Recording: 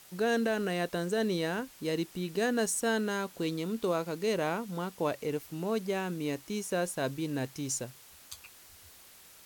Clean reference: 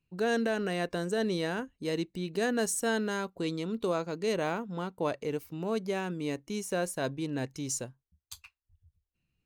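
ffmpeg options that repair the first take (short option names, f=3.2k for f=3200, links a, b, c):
-af "afwtdn=0.002"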